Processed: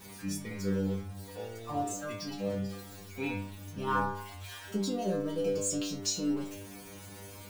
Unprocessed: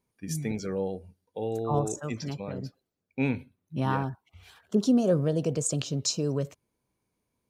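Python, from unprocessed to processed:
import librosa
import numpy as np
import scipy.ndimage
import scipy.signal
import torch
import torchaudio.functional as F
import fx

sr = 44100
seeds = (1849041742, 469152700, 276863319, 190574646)

y = x + 0.5 * 10.0 ** (-37.0 / 20.0) * np.sign(x)
y = fx.stiff_resonator(y, sr, f0_hz=97.0, decay_s=0.73, stiffness=0.002)
y = y * 10.0 ** (9.0 / 20.0)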